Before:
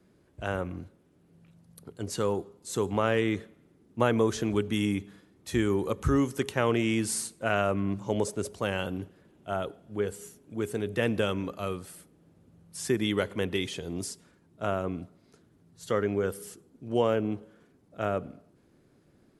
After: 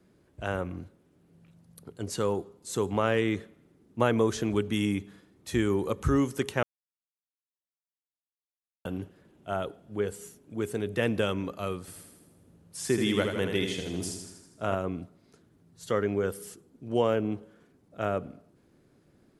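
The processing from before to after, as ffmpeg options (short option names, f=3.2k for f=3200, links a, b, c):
-filter_complex "[0:a]asettb=1/sr,asplit=3[a][b][c];[a]atrim=end=11.804[d];[b]atrim=start=11.8:end=14.75,asetpts=PTS-STARTPTS,afade=t=in:d=0.004:c=qsin,afade=t=out:st=2.946:d=0.004:c=qsin,aecho=1:1:80|160|240|320|400|480|560|640:0.531|0.308|0.179|0.104|0.0601|0.0348|0.0202|0.0117,atrim=end_sample=130095[e];[c]atrim=start=14.746[f];[d][e]acrossfade=d=0.004:c1=hsin:c2=qsin[g];[g][f]acrossfade=d=0.004:c1=qsin:c2=hsin,asplit=3[h][i][j];[h]atrim=end=6.63,asetpts=PTS-STARTPTS,afade=t=out:st=6.626:d=0.004:c=hsin[k];[i]atrim=start=6.63:end=8.85,asetpts=PTS-STARTPTS,volume=0[l];[j]atrim=start=8.85,asetpts=PTS-STARTPTS,afade=t=in:d=0.004:c=hsin[m];[k][l][m]concat=n=3:v=0:a=1"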